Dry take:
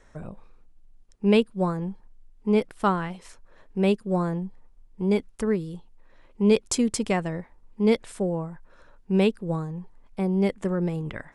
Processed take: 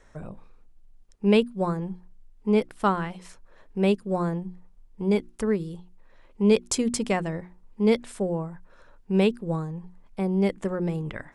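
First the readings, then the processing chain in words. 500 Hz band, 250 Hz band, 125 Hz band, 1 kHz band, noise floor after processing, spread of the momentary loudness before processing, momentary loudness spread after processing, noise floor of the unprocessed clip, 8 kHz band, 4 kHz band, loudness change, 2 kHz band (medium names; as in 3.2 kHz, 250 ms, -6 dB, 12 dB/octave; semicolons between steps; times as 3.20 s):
0.0 dB, -0.5 dB, -1.0 dB, 0.0 dB, -54 dBFS, 17 LU, 16 LU, -55 dBFS, 0.0 dB, 0.0 dB, -0.5 dB, 0.0 dB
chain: hum notches 60/120/180/240/300/360 Hz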